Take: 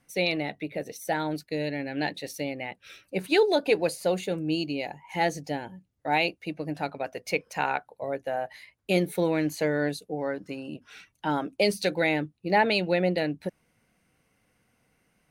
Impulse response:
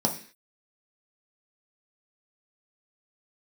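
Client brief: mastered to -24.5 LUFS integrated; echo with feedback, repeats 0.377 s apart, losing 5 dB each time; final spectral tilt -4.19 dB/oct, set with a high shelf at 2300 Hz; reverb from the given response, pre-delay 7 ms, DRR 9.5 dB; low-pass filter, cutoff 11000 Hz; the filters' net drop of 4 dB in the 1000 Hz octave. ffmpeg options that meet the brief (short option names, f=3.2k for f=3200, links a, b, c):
-filter_complex "[0:a]lowpass=11k,equalizer=f=1k:t=o:g=-7,highshelf=f=2.3k:g=9,aecho=1:1:377|754|1131|1508|1885|2262|2639:0.562|0.315|0.176|0.0988|0.0553|0.031|0.0173,asplit=2[a][b];[1:a]atrim=start_sample=2205,adelay=7[c];[b][c]afir=irnorm=-1:irlink=0,volume=-19.5dB[d];[a][d]amix=inputs=2:normalize=0,volume=0.5dB"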